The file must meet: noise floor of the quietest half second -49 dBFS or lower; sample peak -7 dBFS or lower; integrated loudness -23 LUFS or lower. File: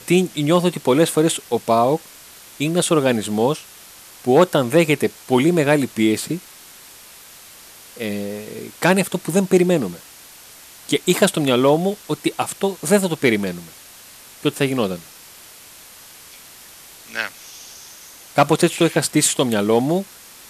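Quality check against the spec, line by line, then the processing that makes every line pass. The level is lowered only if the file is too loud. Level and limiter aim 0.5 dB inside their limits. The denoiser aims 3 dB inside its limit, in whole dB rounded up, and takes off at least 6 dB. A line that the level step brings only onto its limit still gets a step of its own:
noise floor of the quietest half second -43 dBFS: fail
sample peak -4.5 dBFS: fail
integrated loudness -19.0 LUFS: fail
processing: denoiser 6 dB, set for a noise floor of -43 dBFS; gain -4.5 dB

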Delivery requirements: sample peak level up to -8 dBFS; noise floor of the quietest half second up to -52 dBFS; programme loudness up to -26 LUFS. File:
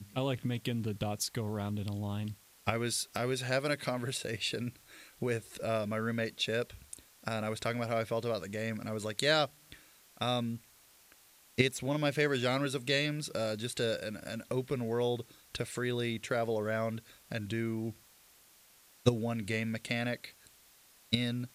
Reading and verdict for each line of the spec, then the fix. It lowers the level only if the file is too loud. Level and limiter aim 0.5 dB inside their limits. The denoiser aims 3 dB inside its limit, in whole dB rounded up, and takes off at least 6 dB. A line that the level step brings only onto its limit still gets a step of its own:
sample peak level -12.0 dBFS: OK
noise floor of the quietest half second -62 dBFS: OK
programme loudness -34.5 LUFS: OK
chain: none

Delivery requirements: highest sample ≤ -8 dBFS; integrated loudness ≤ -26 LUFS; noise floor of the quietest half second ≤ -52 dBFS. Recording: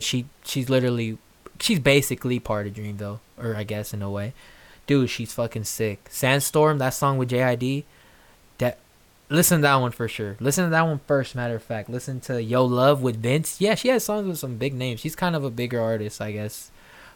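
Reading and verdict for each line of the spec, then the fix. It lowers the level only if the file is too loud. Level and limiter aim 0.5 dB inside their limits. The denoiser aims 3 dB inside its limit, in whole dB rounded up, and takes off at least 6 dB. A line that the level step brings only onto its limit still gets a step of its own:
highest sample -5.0 dBFS: fail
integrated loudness -23.5 LUFS: fail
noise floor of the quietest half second -56 dBFS: OK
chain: gain -3 dB; limiter -8.5 dBFS

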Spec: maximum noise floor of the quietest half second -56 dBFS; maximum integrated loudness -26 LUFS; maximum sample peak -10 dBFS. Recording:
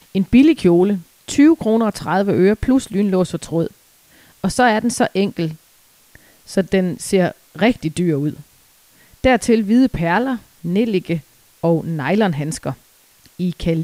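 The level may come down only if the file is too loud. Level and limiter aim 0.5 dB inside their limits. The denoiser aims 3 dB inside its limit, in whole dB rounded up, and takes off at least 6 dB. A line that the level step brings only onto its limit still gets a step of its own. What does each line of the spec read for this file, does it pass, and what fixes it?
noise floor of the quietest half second -53 dBFS: fail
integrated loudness -17.5 LUFS: fail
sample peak -1.5 dBFS: fail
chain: gain -9 dB

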